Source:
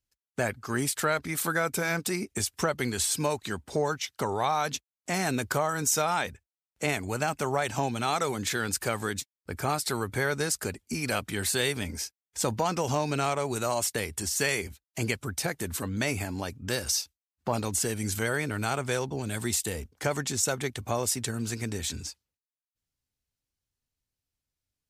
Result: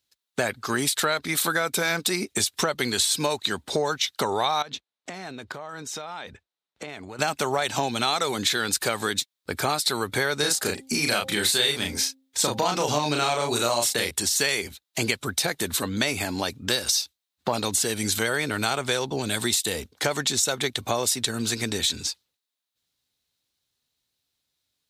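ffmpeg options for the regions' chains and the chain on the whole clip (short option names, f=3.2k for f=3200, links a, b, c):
-filter_complex "[0:a]asettb=1/sr,asplit=3[a][b][c];[a]atrim=end=4.624[d];[b]atrim=start=4.62:end=7.19,asetpts=PTS-STARTPTS,afade=t=in:d=0.004:c=qsin,afade=t=out:st=2.566:d=0.004:c=qsin,aemphasis=mode=reproduction:type=75fm,acompressor=threshold=-39dB:ratio=16:attack=3.2:release=140:knee=1:detection=peak[e];[c]atrim=start=7.186[f];[d][e]acrossfade=d=0.004:c1=hsin:c2=qsin[g];[g][f]acrossfade=d=0.004:c1=qsin:c2=hsin,asettb=1/sr,asplit=3[h][i][j];[h]atrim=end=10.394[k];[i]atrim=start=10.39:end=14.11,asetpts=PTS-STARTPTS,afade=t=in:d=0.004:c=qsin,afade=t=out:st=3.716:d=0.004:c=qsin,asplit=2[l][m];[m]adelay=34,volume=-3dB[n];[l][n]amix=inputs=2:normalize=0,atrim=end_sample=164052,bandreject=f=265:t=h:w=4,bandreject=f=530:t=h:w=4,bandreject=f=795:t=h:w=4[o];[j]atrim=start=14.106[p];[k][o]acrossfade=d=0.004:c1=hsin:c2=qsin[q];[q][p]acrossfade=d=0.004:c1=qsin:c2=hsin,highpass=f=260:p=1,equalizer=f=3.8k:t=o:w=0.47:g=10.5,acompressor=threshold=-30dB:ratio=3,volume=8.5dB"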